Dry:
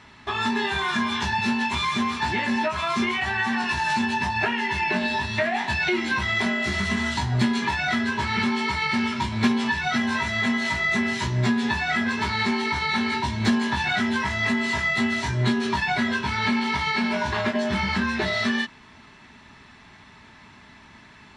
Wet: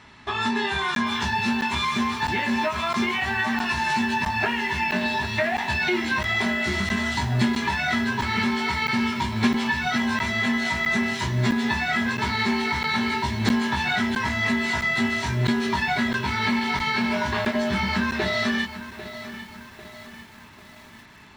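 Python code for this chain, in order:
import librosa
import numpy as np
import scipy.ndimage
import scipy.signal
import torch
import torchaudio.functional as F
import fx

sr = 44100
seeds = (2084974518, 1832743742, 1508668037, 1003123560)

y = fx.buffer_crackle(x, sr, first_s=0.95, period_s=0.66, block=512, kind='zero')
y = fx.echo_crushed(y, sr, ms=796, feedback_pct=55, bits=7, wet_db=-13)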